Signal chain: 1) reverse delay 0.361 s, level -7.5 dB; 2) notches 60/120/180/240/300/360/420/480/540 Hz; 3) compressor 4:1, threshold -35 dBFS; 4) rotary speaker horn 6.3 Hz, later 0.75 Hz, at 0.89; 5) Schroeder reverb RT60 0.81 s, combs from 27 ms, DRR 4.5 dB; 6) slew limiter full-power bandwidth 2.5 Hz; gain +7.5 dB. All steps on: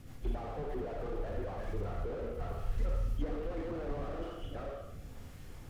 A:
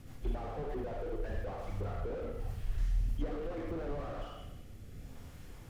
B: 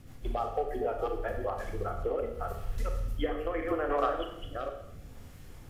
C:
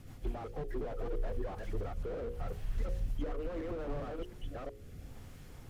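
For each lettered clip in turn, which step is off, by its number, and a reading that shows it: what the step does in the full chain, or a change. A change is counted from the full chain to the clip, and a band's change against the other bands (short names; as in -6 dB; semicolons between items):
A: 1, momentary loudness spread change +5 LU; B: 6, crest factor change +4.0 dB; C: 5, momentary loudness spread change +2 LU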